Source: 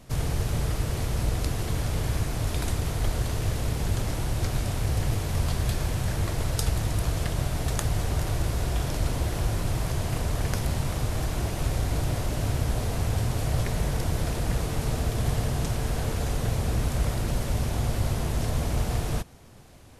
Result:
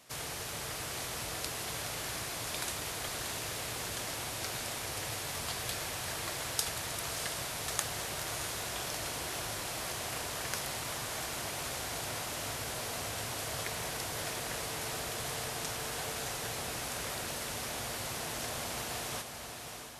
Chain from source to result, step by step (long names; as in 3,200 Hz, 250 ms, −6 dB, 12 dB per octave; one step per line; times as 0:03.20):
high-pass filter 1,300 Hz 6 dB per octave
feedback delay with all-pass diffusion 653 ms, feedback 42%, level −6 dB